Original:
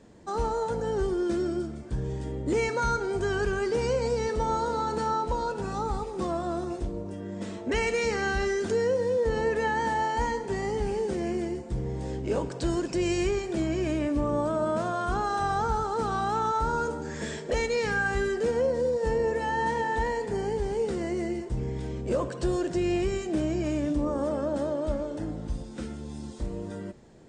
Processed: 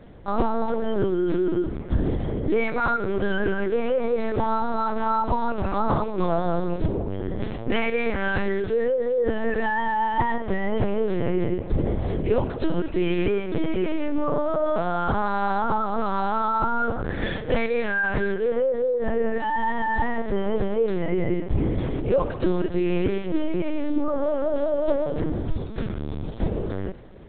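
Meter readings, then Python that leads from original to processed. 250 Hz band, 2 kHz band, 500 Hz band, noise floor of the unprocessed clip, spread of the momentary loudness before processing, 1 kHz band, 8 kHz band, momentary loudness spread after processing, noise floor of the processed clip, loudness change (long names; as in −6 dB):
+4.5 dB, +3.5 dB, +3.5 dB, −39 dBFS, 8 LU, +3.5 dB, below −35 dB, 4 LU, −32 dBFS, +3.5 dB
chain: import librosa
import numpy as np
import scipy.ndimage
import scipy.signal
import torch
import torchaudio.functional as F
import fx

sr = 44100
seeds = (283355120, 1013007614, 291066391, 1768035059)

p1 = fx.rider(x, sr, range_db=3, speed_s=0.5)
p2 = p1 + fx.echo_feedback(p1, sr, ms=126, feedback_pct=53, wet_db=-22.5, dry=0)
p3 = fx.lpc_vocoder(p2, sr, seeds[0], excitation='pitch_kept', order=8)
y = F.gain(torch.from_numpy(p3), 5.5).numpy()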